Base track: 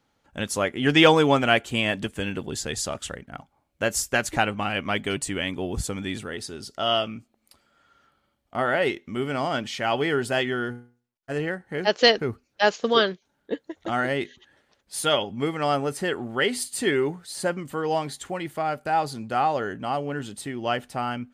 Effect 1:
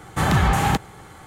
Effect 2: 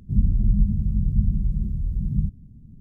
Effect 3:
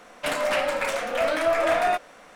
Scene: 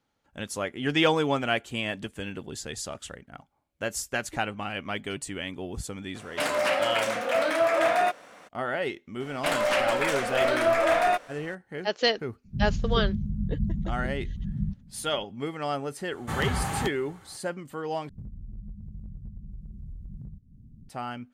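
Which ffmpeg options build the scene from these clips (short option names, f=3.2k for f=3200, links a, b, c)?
-filter_complex "[3:a]asplit=2[a][b];[2:a]asplit=2[c][d];[0:a]volume=-6.5dB[e];[a]highpass=100[f];[c]equalizer=f=200:t=o:w=0.95:g=7.5[g];[d]acompressor=threshold=-31dB:ratio=8:attack=0.33:release=405:knee=1:detection=peak[h];[e]asplit=2[i][j];[i]atrim=end=18.094[k];[h]atrim=end=2.8,asetpts=PTS-STARTPTS,volume=-4.5dB[l];[j]atrim=start=20.886[m];[f]atrim=end=2.35,asetpts=PTS-STARTPTS,volume=-1dB,afade=t=in:d=0.02,afade=t=out:st=2.33:d=0.02,adelay=6140[n];[b]atrim=end=2.35,asetpts=PTS-STARTPTS,volume=-0.5dB,afade=t=in:d=0.004:c=hsin,afade=t=out:st=2.346:d=0.004:c=hsin,adelay=9200[o];[g]atrim=end=2.8,asetpts=PTS-STARTPTS,volume=-9.5dB,afade=t=in:d=0.004:c=hsin,afade=t=out:st=2.796:d=0.004:c=hsin,adelay=12440[p];[1:a]atrim=end=1.26,asetpts=PTS-STARTPTS,volume=-10.5dB,afade=t=in:d=0.004:c=hsin,afade=t=out:st=1.256:d=0.004:c=hsin,adelay=16110[q];[k][l]acrossfade=d=0.004:c1=hsin:c2=hsin[r];[r][m]acrossfade=d=0.004:c1=hsin:c2=hsin[s];[s][n][o][p][q]amix=inputs=5:normalize=0"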